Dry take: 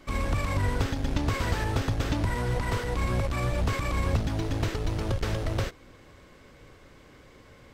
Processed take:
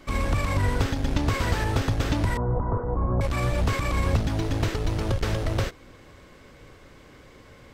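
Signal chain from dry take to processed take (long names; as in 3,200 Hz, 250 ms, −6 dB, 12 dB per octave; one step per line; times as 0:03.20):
0:02.37–0:03.21: Butterworth low-pass 1,200 Hz 36 dB per octave
level +3 dB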